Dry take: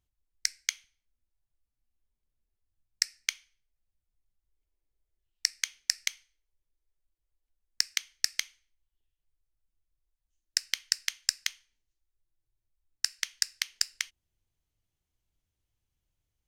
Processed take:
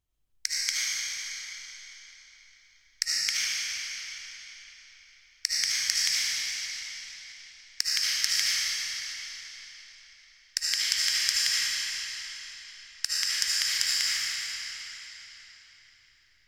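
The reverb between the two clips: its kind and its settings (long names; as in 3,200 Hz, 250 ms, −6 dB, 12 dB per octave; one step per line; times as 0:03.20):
comb and all-pass reverb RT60 4.2 s, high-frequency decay 0.9×, pre-delay 35 ms, DRR −9 dB
level −2 dB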